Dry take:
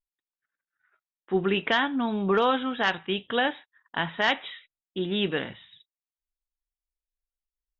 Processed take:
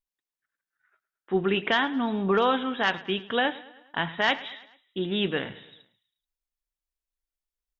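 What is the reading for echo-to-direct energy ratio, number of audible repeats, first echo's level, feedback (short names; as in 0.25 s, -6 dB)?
-17.5 dB, 3, -19.0 dB, 53%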